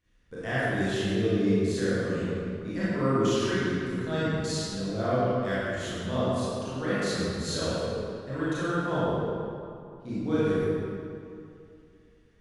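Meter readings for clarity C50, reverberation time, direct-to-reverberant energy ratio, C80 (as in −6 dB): −6.5 dB, 2.6 s, −12.0 dB, −4.0 dB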